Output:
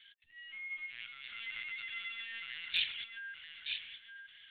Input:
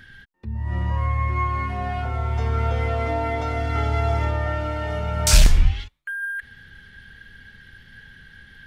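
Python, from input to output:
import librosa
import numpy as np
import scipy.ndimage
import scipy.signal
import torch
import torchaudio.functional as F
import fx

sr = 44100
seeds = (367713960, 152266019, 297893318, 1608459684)

p1 = scipy.signal.sosfilt(scipy.signal.cheby2(4, 50, 970.0, 'highpass', fs=sr, output='sos'), x)
p2 = fx.stretch_vocoder(p1, sr, factor=0.52)
p3 = p2 + fx.echo_feedback(p2, sr, ms=930, feedback_pct=30, wet_db=-6.5, dry=0)
p4 = fx.lpc_vocoder(p3, sr, seeds[0], excitation='pitch_kept', order=8)
p5 = np.clip(p4, -10.0 ** (-20.0 / 20.0), 10.0 ** (-20.0 / 20.0))
y = F.gain(torch.from_numpy(p5), 1.0).numpy()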